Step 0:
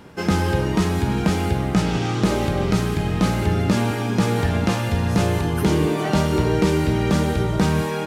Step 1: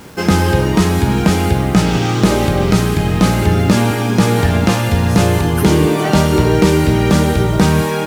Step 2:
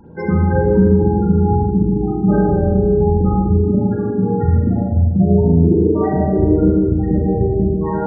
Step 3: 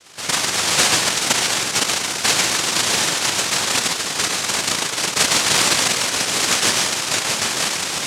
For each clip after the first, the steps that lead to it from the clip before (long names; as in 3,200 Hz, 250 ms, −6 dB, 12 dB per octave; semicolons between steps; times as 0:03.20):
high-shelf EQ 8,400 Hz +5 dB; bit reduction 8 bits; level +7 dB
gate on every frequency bin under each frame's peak −10 dB strong; flanger 0.33 Hz, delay 1.1 ms, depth 7.5 ms, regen +71%; spring reverb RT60 1.4 s, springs 36/48 ms, chirp 35 ms, DRR −4.5 dB; level −1 dB
cochlear-implant simulation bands 1; level −4.5 dB